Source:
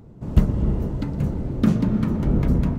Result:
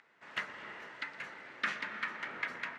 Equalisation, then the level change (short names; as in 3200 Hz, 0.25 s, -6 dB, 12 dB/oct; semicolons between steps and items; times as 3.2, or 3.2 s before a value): ladder band-pass 2100 Hz, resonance 55%; +14.5 dB